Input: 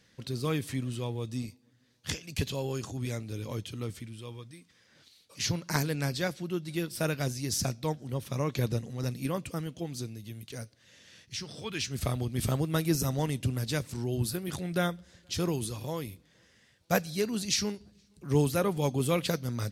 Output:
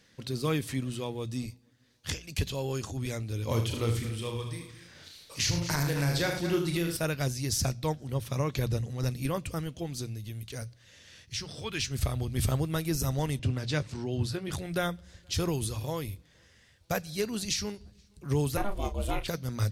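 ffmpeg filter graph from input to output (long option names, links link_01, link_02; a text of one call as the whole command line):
ffmpeg -i in.wav -filter_complex "[0:a]asettb=1/sr,asplit=3[link_01][link_02][link_03];[link_01]atrim=end=3.474[link_04];[link_02]atrim=start=3.47:end=6.97,asetpts=PTS-STARTPTS,afade=type=in:duration=0.004:curve=qsin,afade=type=out:start_time=3.496:duration=0.004:curve=qsin,aecho=1:1:77|217|287:0.422|0.188|0.126,atrim=end_sample=154350,acontrast=48,asplit=2[link_05][link_06];[link_06]adelay=35,volume=-6dB[link_07];[link_05][link_07]amix=inputs=2:normalize=0,atrim=end_sample=154350[link_08];[link_03]atrim=start=6.966[link_09];[link_04][link_08]acrossfade=duration=0.004:curve1=hsin:curve2=qsin[link_10];[link_10][link_09]acrossfade=duration=0.004:curve1=qsin:curve2=hsin,asettb=1/sr,asplit=3[link_11][link_12][link_13];[link_11]atrim=end=13.394[link_14];[link_12]atrim=start=13.39:end=14.51,asetpts=PTS-STARTPTS,afade=type=in:duration=0.004:curve=qsin,afade=type=out:start_time=1.116:duration=0.004:curve=qsin,highpass=100,lowpass=5200,asplit=2[link_15][link_16];[link_16]adelay=20,volume=-13.5dB[link_17];[link_15][link_17]amix=inputs=2:normalize=0,atrim=end_sample=49392[link_18];[link_13]atrim=start=14.506[link_19];[link_14][link_18]acrossfade=duration=0.004:curve1=hsin:curve2=qsin[link_20];[link_20][link_19]acrossfade=duration=0.004:curve1=qsin:curve2=hsin,asettb=1/sr,asplit=3[link_21][link_22][link_23];[link_21]atrim=end=18.574[link_24];[link_22]atrim=start=18.57:end=19.28,asetpts=PTS-STARTPTS,afade=type=in:duration=0.004:curve=qsin,afade=type=out:start_time=0.706:duration=0.004:curve=qsin,bass=frequency=250:gain=-9,treble=frequency=4000:gain=-5,asplit=2[link_25][link_26];[link_26]adelay=34,volume=-11dB[link_27];[link_25][link_27]amix=inputs=2:normalize=0,atrim=end_sample=31311,aeval=exprs='val(0)*sin(2*PI*200*n/s)':channel_layout=same[link_28];[link_23]atrim=start=19.276[link_29];[link_24][link_28]acrossfade=duration=0.004:curve1=hsin:curve2=qsin[link_30];[link_30][link_29]acrossfade=duration=0.004:curve1=qsin:curve2=hsin,bandreject=frequency=60:width_type=h:width=6,bandreject=frequency=120:width_type=h:width=6,bandreject=frequency=180:width_type=h:width=6,asubboost=boost=4.5:cutoff=86,alimiter=limit=-20dB:level=0:latency=1:release=320,volume=2dB" out.wav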